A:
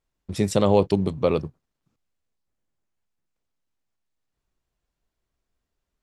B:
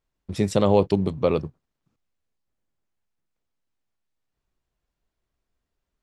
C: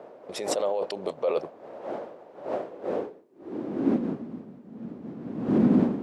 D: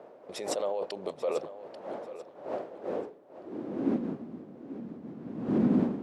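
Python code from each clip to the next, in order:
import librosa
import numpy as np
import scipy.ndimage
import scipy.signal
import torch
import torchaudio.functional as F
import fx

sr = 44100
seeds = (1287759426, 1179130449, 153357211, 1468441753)

y1 = fx.high_shelf(x, sr, hz=7900.0, db=-7.5)
y2 = fx.dmg_wind(y1, sr, seeds[0], corner_hz=270.0, level_db=-33.0)
y2 = fx.over_compress(y2, sr, threshold_db=-25.0, ratio=-1.0)
y2 = fx.filter_sweep_highpass(y2, sr, from_hz=570.0, to_hz=220.0, start_s=2.6, end_s=4.2, q=3.0)
y3 = fx.echo_feedback(y2, sr, ms=839, feedback_pct=25, wet_db=-14.0)
y3 = y3 * librosa.db_to_amplitude(-4.5)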